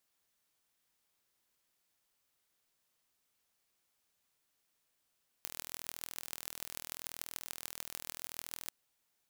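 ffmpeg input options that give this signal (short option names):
-f lavfi -i "aevalsrc='0.282*eq(mod(n,1081),0)*(0.5+0.5*eq(mod(n,6486),0))':d=3.25:s=44100"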